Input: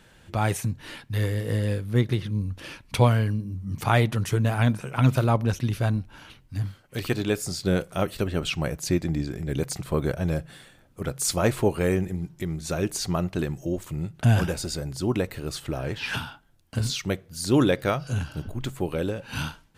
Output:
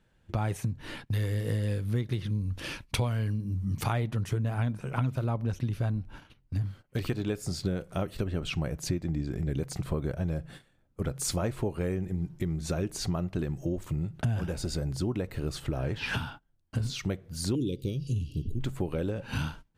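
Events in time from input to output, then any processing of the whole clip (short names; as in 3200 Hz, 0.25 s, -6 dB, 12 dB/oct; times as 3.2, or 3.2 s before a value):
1.06–3.93 high shelf 2200 Hz +8 dB
17.55–18.6 elliptic band-stop 410–2900 Hz
whole clip: gate -44 dBFS, range -16 dB; tilt -1.5 dB/oct; compressor 6:1, threshold -27 dBFS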